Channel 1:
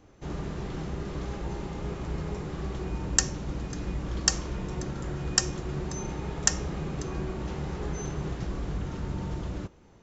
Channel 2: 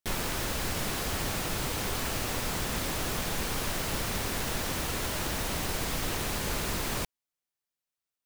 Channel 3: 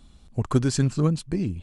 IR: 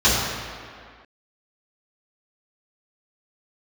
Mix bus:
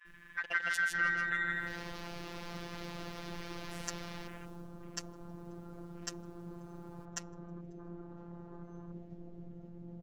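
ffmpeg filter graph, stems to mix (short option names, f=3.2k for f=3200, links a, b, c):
-filter_complex "[0:a]highshelf=f=4k:g=-9,bandreject=f=480:w=14,adelay=700,volume=-9dB,asplit=2[a][b];[b]volume=-19dB[c];[1:a]volume=-8dB,afade=t=in:st=1.26:d=0.51:silence=0.251189,afade=t=out:st=4.13:d=0.57:silence=0.266073[d];[2:a]acompressor=threshold=-31dB:ratio=1.5,aeval=exprs='val(0)*sin(2*PI*1700*n/s)':c=same,volume=-1dB,asplit=3[e][f][g];[f]volume=-3.5dB[h];[g]apad=whole_len=363887[i];[d][i]sidechaincompress=threshold=-34dB:ratio=8:attack=16:release=322[j];[c][h]amix=inputs=2:normalize=0,aecho=0:1:159|318|477|636|795:1|0.34|0.116|0.0393|0.0134[k];[a][j][e][k]amix=inputs=4:normalize=0,afwtdn=0.00447,lowshelf=f=170:g=-4,afftfilt=real='hypot(re,im)*cos(PI*b)':imag='0':win_size=1024:overlap=0.75"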